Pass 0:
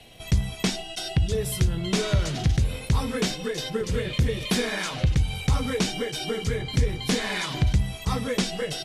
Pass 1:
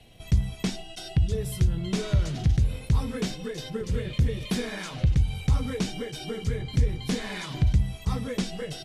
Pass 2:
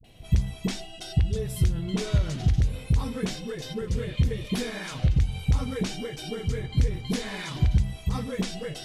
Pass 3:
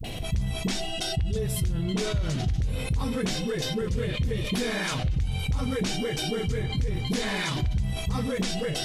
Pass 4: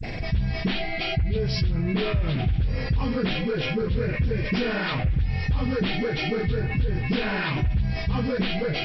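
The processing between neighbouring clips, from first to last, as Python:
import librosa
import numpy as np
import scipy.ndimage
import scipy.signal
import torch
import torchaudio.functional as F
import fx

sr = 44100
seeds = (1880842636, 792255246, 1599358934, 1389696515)

y1 = fx.low_shelf(x, sr, hz=270.0, db=8.5)
y1 = y1 * 10.0 ** (-7.5 / 20.0)
y2 = fx.dispersion(y1, sr, late='highs', ms=43.0, hz=450.0)
y3 = fx.env_flatten(y2, sr, amount_pct=70)
y3 = y3 * 10.0 ** (-7.0 / 20.0)
y4 = fx.freq_compress(y3, sr, knee_hz=1100.0, ratio=1.5)
y4 = y4 * 10.0 ** (3.0 / 20.0)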